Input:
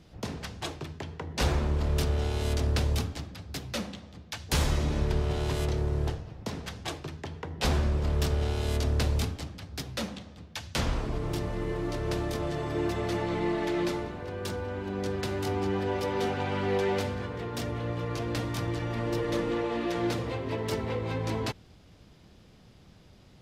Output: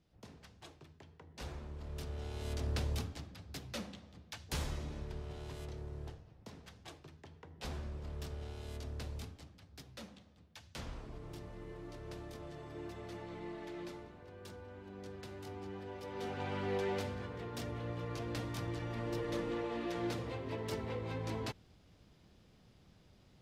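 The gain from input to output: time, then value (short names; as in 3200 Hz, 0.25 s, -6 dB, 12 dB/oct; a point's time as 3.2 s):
1.74 s -19 dB
2.72 s -9 dB
4.28 s -9 dB
5.05 s -16.5 dB
16 s -16.5 dB
16.45 s -8.5 dB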